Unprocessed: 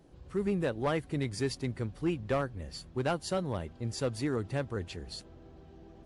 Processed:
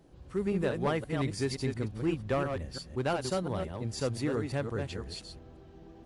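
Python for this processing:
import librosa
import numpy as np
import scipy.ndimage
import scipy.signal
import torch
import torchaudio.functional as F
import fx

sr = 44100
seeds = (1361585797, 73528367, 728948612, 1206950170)

y = fx.reverse_delay(x, sr, ms=174, wet_db=-5.5)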